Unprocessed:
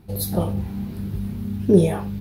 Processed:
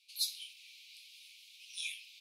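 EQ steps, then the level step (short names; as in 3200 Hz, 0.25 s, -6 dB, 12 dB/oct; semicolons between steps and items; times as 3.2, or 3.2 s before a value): steep high-pass 2300 Hz 96 dB/oct; air absorption 98 m; high shelf 3400 Hz +9 dB; 0.0 dB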